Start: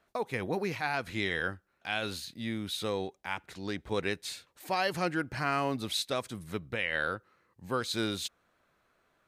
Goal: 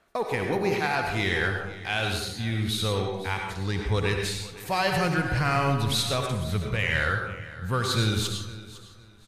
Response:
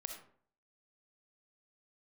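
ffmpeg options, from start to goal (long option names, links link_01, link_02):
-filter_complex "[0:a]asubboost=boost=9:cutoff=99,asplit=2[link_01][link_02];[link_02]asoftclip=type=hard:threshold=-30dB,volume=-6dB[link_03];[link_01][link_03]amix=inputs=2:normalize=0,aecho=1:1:507|1014:0.141|0.0367[link_04];[1:a]atrim=start_sample=2205,asetrate=26901,aresample=44100[link_05];[link_04][link_05]afir=irnorm=-1:irlink=0,volume=4dB" -ar 32000 -c:a libmp3lame -b:a 64k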